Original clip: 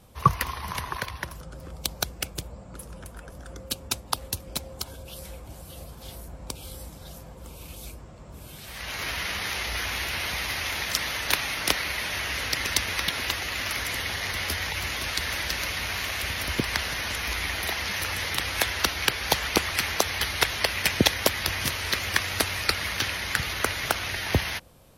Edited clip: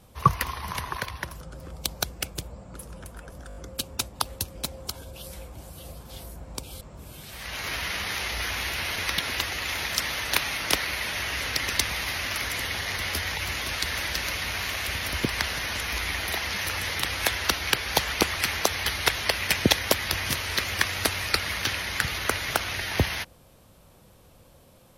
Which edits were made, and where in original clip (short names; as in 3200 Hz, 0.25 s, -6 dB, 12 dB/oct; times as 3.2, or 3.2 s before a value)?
3.48 stutter 0.02 s, 5 plays
6.73–8.16 cut
10.31–10.65 swap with 12.86–13.58